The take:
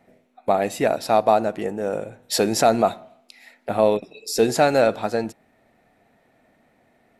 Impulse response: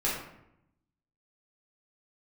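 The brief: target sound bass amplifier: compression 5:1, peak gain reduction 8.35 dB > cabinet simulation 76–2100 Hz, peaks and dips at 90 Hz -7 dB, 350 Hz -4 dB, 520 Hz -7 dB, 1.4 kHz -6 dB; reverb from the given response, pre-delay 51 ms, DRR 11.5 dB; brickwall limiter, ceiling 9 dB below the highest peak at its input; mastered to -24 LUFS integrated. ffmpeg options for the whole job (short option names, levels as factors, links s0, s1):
-filter_complex "[0:a]alimiter=limit=0.224:level=0:latency=1,asplit=2[s0][s1];[1:a]atrim=start_sample=2205,adelay=51[s2];[s1][s2]afir=irnorm=-1:irlink=0,volume=0.0944[s3];[s0][s3]amix=inputs=2:normalize=0,acompressor=threshold=0.0501:ratio=5,highpass=f=76:w=0.5412,highpass=f=76:w=1.3066,equalizer=f=90:t=q:w=4:g=-7,equalizer=f=350:t=q:w=4:g=-4,equalizer=f=520:t=q:w=4:g=-7,equalizer=f=1400:t=q:w=4:g=-6,lowpass=f=2100:w=0.5412,lowpass=f=2100:w=1.3066,volume=3.55"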